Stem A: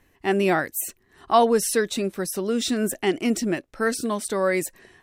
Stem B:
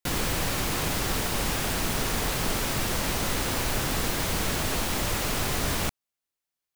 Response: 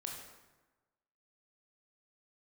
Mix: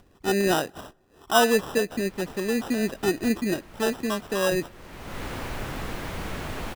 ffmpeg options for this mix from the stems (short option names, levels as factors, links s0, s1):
-filter_complex "[0:a]highshelf=f=3200:g=-11.5,acrusher=samples=20:mix=1:aa=0.000001,volume=0.841,asplit=3[s0][s1][s2];[s1]volume=0.0668[s3];[1:a]acrossover=split=3000[s4][s5];[s5]acompressor=threshold=0.00794:ratio=4:attack=1:release=60[s6];[s4][s6]amix=inputs=2:normalize=0,adelay=1850,volume=0.596,asplit=2[s7][s8];[s8]volume=0.075[s9];[s2]apad=whole_len=379313[s10];[s7][s10]sidechaincompress=threshold=0.00501:ratio=6:attack=6.4:release=390[s11];[2:a]atrim=start_sample=2205[s12];[s3][s9]amix=inputs=2:normalize=0[s13];[s13][s12]afir=irnorm=-1:irlink=0[s14];[s0][s11][s14]amix=inputs=3:normalize=0,acompressor=mode=upward:threshold=0.00316:ratio=2.5"